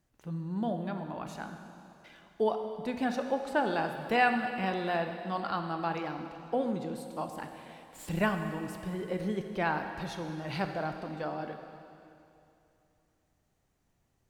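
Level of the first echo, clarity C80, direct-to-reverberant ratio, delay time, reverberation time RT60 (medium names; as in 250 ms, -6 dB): no echo, 7.5 dB, 5.5 dB, no echo, 2.7 s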